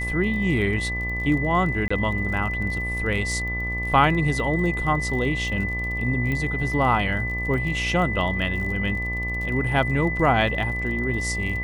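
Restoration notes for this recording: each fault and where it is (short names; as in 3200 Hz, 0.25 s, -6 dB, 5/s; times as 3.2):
buzz 60 Hz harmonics 20 -30 dBFS
crackle 36/s -32 dBFS
tone 2000 Hz -27 dBFS
1.88–1.91 gap 25 ms
6.32 pop -16 dBFS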